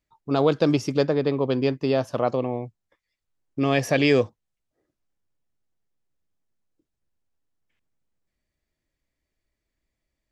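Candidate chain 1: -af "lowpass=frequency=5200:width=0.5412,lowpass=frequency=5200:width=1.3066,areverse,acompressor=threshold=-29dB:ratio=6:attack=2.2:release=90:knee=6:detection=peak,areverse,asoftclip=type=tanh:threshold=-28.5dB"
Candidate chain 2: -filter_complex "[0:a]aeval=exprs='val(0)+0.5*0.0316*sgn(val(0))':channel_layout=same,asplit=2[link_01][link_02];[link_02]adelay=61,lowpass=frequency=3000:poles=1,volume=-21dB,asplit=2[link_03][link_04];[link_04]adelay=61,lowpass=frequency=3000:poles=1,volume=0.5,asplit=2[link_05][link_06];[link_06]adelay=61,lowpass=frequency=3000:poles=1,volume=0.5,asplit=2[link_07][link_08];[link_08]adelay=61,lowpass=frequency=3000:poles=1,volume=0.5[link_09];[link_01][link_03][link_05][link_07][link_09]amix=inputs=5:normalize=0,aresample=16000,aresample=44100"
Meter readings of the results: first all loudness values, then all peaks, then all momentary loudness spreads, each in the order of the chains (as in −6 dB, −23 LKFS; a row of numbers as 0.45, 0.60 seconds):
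−37.0, −22.0 LKFS; −28.5, −6.5 dBFS; 6, 19 LU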